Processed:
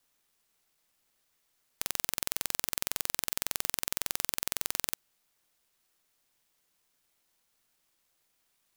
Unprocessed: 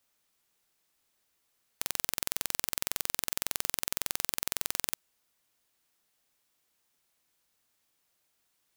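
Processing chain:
bit-depth reduction 12 bits, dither none

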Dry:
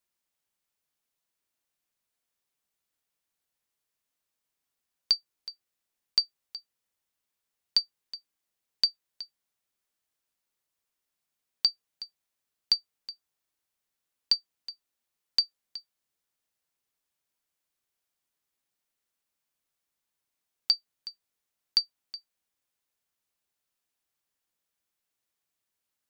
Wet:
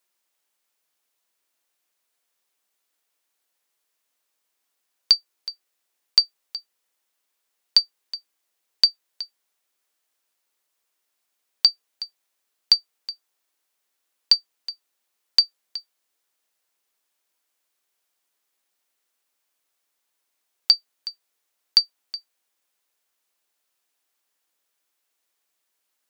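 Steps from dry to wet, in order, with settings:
high-pass filter 330 Hz
level +8 dB

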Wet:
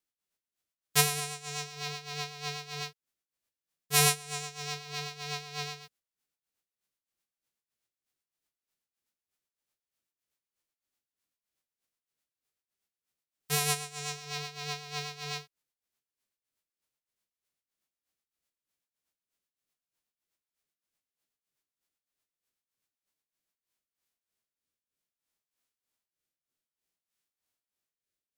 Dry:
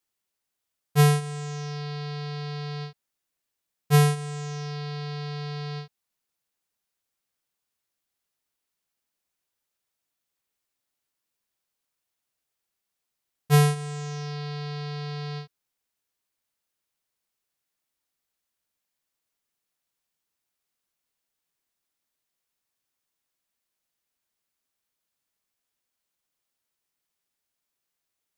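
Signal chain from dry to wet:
spectral envelope flattened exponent 0.3
amplitude tremolo 3.2 Hz, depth 75%
rotating-speaker cabinet horn 8 Hz, later 0.6 Hz, at 0:23.20

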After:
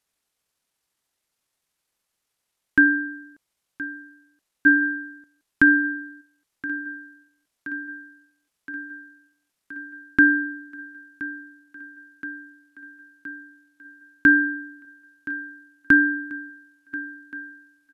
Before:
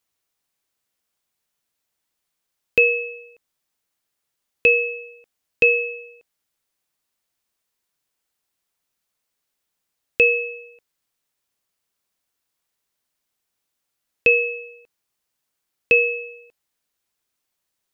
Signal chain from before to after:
feedback echo with a high-pass in the loop 1,022 ms, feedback 76%, high-pass 180 Hz, level −16 dB
pitch shifter −8.5 semitones

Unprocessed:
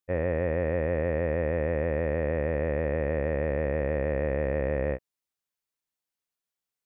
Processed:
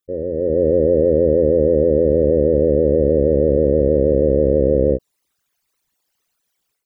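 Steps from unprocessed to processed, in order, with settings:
spectral envelope exaggerated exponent 3
in parallel at −0.5 dB: brickwall limiter −28 dBFS, peak gain reduction 10 dB
on the sum: automatic gain control gain up to 11 dB

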